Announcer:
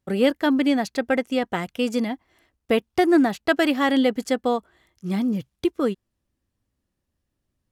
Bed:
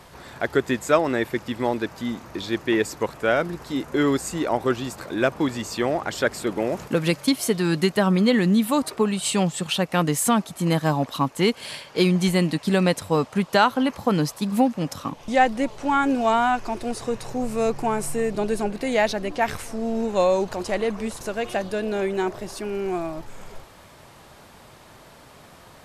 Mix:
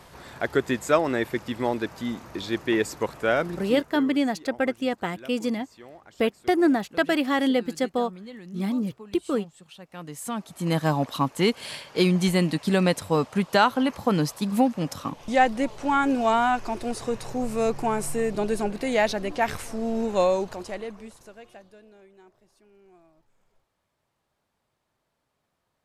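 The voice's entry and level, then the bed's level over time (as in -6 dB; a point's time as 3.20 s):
3.50 s, -3.0 dB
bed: 3.65 s -2 dB
4.12 s -23 dB
9.78 s -23 dB
10.79 s -1.5 dB
20.24 s -1.5 dB
22.07 s -29.5 dB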